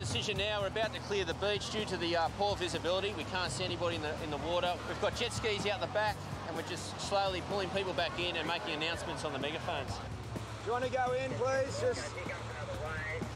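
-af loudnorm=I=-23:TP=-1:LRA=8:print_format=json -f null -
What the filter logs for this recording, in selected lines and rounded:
"input_i" : "-35.0",
"input_tp" : "-21.6",
"input_lra" : "1.9",
"input_thresh" : "-45.0",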